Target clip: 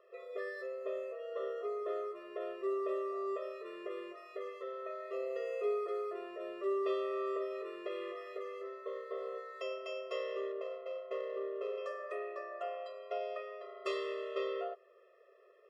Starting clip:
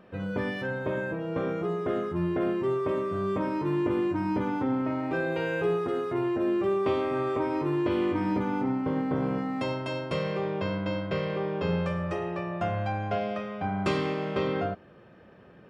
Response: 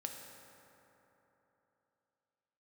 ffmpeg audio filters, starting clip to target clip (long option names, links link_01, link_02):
-filter_complex "[0:a]asettb=1/sr,asplit=3[link_01][link_02][link_03];[link_01]atrim=end=10.524[link_04];[link_02]atrim=start=10.52:end=11.78,asetpts=PTS-STARTPTS,afade=type=in:duration=0.004:curve=qsin,afade=type=out:start_time=1.256:duration=0.004:curve=qsin,adynamicsmooth=sensitivity=1.5:basefreq=1600[link_05];[link_03]atrim=start=11.776[link_06];[link_04][link_05]acrossfade=duration=0.004:curve1=hsin:curve2=qsin[link_07];[link_07][link_06]acrossfade=duration=0.004:curve1=qsin:curve2=hsin,afftfilt=real='re*eq(mod(floor(b*sr/1024/350),2),1)':imag='im*eq(mod(floor(b*sr/1024/350),2),1)':win_size=1024:overlap=0.75,volume=-6.5dB"